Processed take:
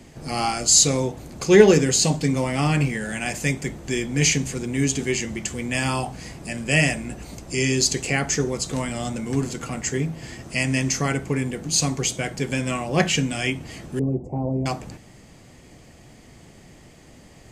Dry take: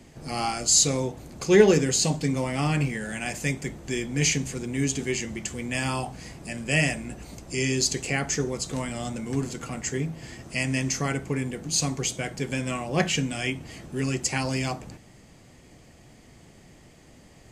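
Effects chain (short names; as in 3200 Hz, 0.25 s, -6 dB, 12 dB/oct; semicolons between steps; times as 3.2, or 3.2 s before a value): 13.99–14.66 inverse Chebyshev low-pass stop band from 1500 Hz, stop band 40 dB; gain +4 dB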